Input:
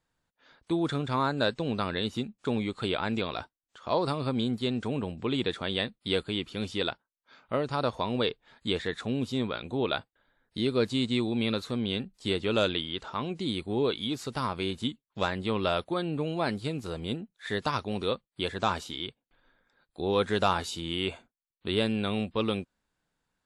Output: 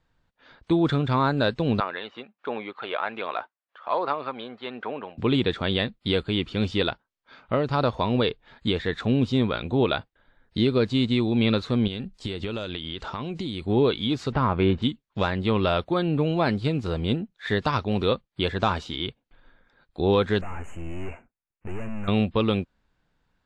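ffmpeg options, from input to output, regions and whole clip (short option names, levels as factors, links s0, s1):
-filter_complex "[0:a]asettb=1/sr,asplit=3[s0][s1][s2];[s0]atrim=end=1.804[s3];[s1]atrim=start=1.8:end=5.18,asetpts=PTS-STARTPTS,afade=t=in:d=0.004:c=qsin,afade=t=out:st=3.376:d=0.004:c=qsin,aphaser=in_gain=1:out_gain=1:delay=1.8:decay=0.29:speed=1.3:type=sinusoidal,highpass=710,lowpass=2000[s4];[s2]atrim=start=5.176[s5];[s3][s4]acrossfade=d=0.004:c1=hsin:c2=qsin[s6];[s6][s5]acrossfade=d=0.004:c1=qsin:c2=hsin,asettb=1/sr,asplit=3[s7][s8][s9];[s7]atrim=end=11.874[s10];[s8]atrim=start=11.87:end=13.65,asetpts=PTS-STARTPTS,afade=t=in:d=0.004:c=qsin,afade=t=out:st=1.776:d=0.004:c=qsin,highshelf=f=6500:g=10,acompressor=threshold=0.02:ratio=10:attack=3.2:release=140:knee=1:detection=peak[s11];[s9]atrim=start=13.646[s12];[s10][s11]acrossfade=d=0.004:c1=hsin:c2=qsin[s13];[s13][s12]acrossfade=d=0.004:c1=qsin:c2=hsin,asettb=1/sr,asplit=3[s14][s15][s16];[s14]atrim=end=14.324[s17];[s15]atrim=start=14.32:end=14.82,asetpts=PTS-STARTPTS,afade=t=in:d=0.004:c=qsin,afade=t=out:st=0.496:d=0.004:c=qsin,lowpass=2000,acontrast=54[s18];[s16]atrim=start=14.816[s19];[s17][s18]acrossfade=d=0.004:c1=hsin:c2=qsin[s20];[s20][s19]acrossfade=d=0.004:c1=qsin:c2=hsin,asettb=1/sr,asplit=3[s21][s22][s23];[s21]atrim=end=20.414[s24];[s22]atrim=start=20.41:end=22.08,asetpts=PTS-STARTPTS,afade=t=in:d=0.004:c=qsin,afade=t=out:st=1.666:d=0.004:c=qsin,aeval=exprs='(tanh(112*val(0)+0.75)-tanh(0.75))/112':c=same,asuperstop=centerf=4300:order=12:qfactor=1.1[s25];[s23]atrim=start=22.076[s26];[s24][s25]acrossfade=d=0.004:c1=hsin:c2=qsin[s27];[s27][s26]acrossfade=d=0.004:c1=qsin:c2=hsin,lowpass=4400,lowshelf=f=110:g=9,alimiter=limit=0.126:level=0:latency=1:release=379,volume=2.11"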